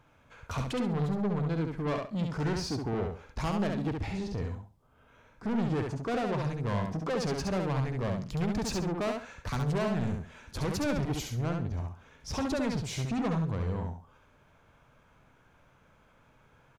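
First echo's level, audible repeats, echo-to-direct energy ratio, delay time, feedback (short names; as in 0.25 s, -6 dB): -4.0 dB, 3, -3.5 dB, 68 ms, 24%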